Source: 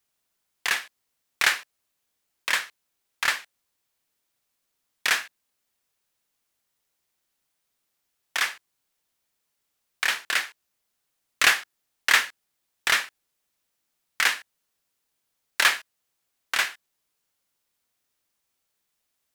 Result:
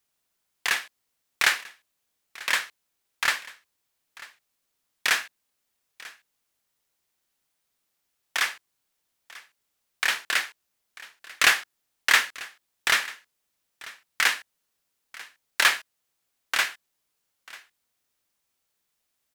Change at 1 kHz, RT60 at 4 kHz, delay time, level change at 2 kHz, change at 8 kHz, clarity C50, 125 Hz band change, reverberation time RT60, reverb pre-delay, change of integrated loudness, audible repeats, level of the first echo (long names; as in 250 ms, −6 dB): 0.0 dB, no reverb audible, 942 ms, 0.0 dB, 0.0 dB, no reverb audible, can't be measured, no reverb audible, no reverb audible, 0.0 dB, 1, −20.0 dB